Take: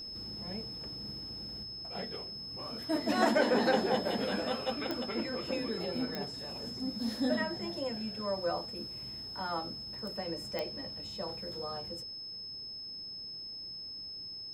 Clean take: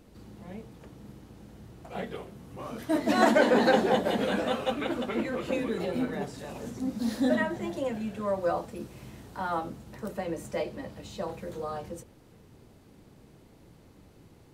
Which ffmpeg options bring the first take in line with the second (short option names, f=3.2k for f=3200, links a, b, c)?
-af "adeclick=t=4,bandreject=f=5.2k:w=30,asetnsamples=n=441:p=0,asendcmd='1.63 volume volume 5.5dB',volume=0dB"